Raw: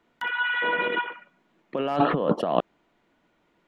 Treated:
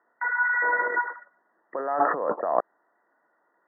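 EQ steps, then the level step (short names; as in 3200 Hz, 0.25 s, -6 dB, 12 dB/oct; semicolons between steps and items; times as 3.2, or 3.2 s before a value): HPF 610 Hz 12 dB/oct; brick-wall FIR low-pass 2000 Hz; +2.5 dB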